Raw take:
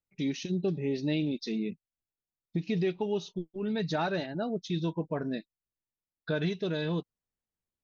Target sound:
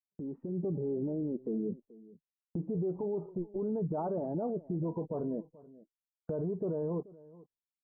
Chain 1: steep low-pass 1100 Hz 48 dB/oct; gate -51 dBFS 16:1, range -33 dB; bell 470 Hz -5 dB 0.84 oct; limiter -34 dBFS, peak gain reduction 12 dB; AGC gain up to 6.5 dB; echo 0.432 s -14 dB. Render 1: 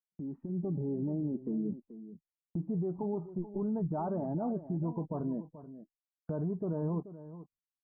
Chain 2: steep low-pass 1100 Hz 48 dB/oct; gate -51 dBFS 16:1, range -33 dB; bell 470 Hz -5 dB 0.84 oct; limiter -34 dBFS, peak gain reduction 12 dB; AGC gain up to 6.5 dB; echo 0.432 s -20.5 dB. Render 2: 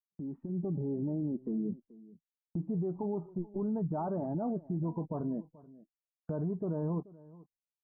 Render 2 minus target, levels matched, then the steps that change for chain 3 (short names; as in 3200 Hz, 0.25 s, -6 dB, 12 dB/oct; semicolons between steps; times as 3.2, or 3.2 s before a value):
500 Hz band -3.5 dB
change: bell 470 Hz +7 dB 0.84 oct